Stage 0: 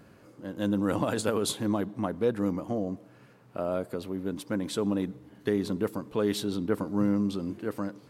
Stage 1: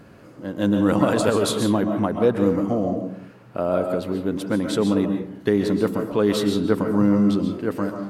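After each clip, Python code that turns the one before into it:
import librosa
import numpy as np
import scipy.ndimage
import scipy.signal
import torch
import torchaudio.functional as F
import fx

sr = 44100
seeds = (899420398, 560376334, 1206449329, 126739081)

y = fx.high_shelf(x, sr, hz=5000.0, db=-5.0)
y = fx.rev_freeverb(y, sr, rt60_s=0.58, hf_ratio=0.45, predelay_ms=95, drr_db=4.5)
y = F.gain(torch.from_numpy(y), 7.5).numpy()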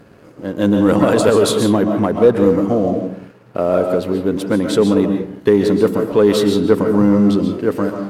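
y = fx.leveller(x, sr, passes=1)
y = fx.peak_eq(y, sr, hz=440.0, db=4.5, octaves=0.53)
y = F.gain(torch.from_numpy(y), 1.5).numpy()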